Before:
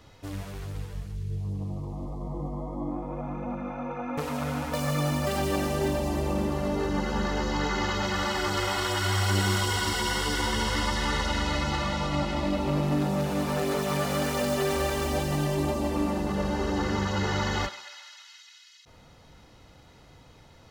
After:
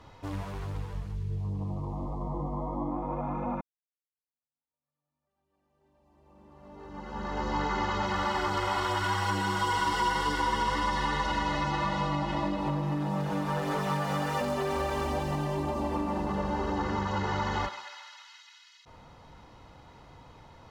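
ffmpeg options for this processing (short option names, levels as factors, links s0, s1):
-filter_complex "[0:a]asettb=1/sr,asplit=3[s0][s1][s2];[s0]atrim=end=9.034[s3];[s1]atrim=start=9.03:end=14.41,asetpts=PTS-STARTPTS,afade=t=in:d=0.004:c=qsin,afade=t=out:st=5.376:d=0.004:c=qsin,aecho=1:1:6.2:0.65,atrim=end_sample=237258[s4];[s2]atrim=start=14.406[s5];[s3][s4]acrossfade=d=0.004:c1=hsin:c2=qsin[s6];[s6][s5]acrossfade=d=0.004:c1=qsin:c2=hsin,asplit=2[s7][s8];[s7]atrim=end=3.61,asetpts=PTS-STARTPTS,afade=t=out:st=3.606:d=0.004:c=hsin[s9];[s8]atrim=start=3.61,asetpts=PTS-STARTPTS,afade=t=in:d=4:c=exp[s10];[s9][s10]concat=n=2:v=0:a=1,aemphasis=mode=reproduction:type=cd,acompressor=threshold=0.0398:ratio=6,equalizer=f=970:t=o:w=0.59:g=8"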